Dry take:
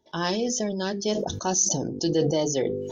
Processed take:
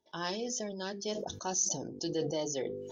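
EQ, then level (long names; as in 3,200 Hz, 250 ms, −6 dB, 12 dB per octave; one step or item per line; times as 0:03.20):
low-shelf EQ 310 Hz −6.5 dB
−8.0 dB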